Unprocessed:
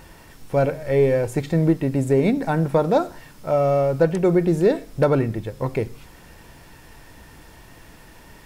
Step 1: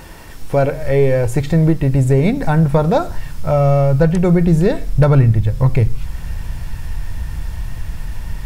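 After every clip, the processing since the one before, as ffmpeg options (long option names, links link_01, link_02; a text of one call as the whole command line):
ffmpeg -i in.wav -filter_complex "[0:a]asubboost=boost=11:cutoff=100,asplit=2[link_01][link_02];[link_02]acompressor=threshold=-24dB:ratio=6,volume=0.5dB[link_03];[link_01][link_03]amix=inputs=2:normalize=0,volume=2dB" out.wav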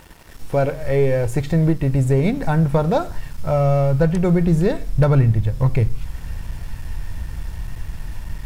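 ffmpeg -i in.wav -af "aeval=exprs='sgn(val(0))*max(abs(val(0))-0.0106,0)':channel_layout=same,volume=-3.5dB" out.wav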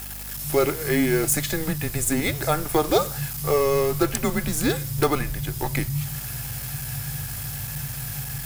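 ffmpeg -i in.wav -af "afreqshift=-150,aemphasis=mode=production:type=riaa,aeval=exprs='val(0)+0.00794*(sin(2*PI*50*n/s)+sin(2*PI*2*50*n/s)/2+sin(2*PI*3*50*n/s)/3+sin(2*PI*4*50*n/s)/4+sin(2*PI*5*50*n/s)/5)':channel_layout=same,volume=2.5dB" out.wav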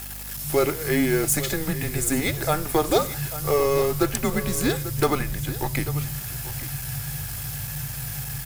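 ffmpeg -i in.wav -af "aecho=1:1:842:0.2" -ar 44100 -c:a libmp3lame -b:a 112k out.mp3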